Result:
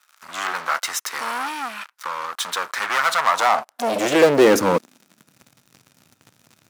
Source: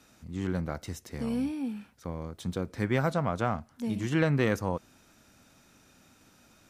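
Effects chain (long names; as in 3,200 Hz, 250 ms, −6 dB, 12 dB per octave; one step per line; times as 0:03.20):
leveller curve on the samples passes 5
high-pass filter sweep 1,200 Hz → 120 Hz, 0:03.15–0:05.55
level +2.5 dB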